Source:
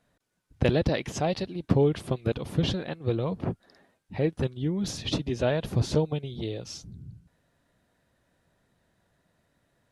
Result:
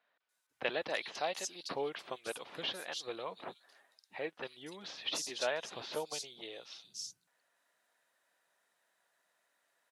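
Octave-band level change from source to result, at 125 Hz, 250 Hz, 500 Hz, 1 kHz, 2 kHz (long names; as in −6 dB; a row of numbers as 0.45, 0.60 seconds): −32.5, −22.0, −11.5, −5.0, −2.0 decibels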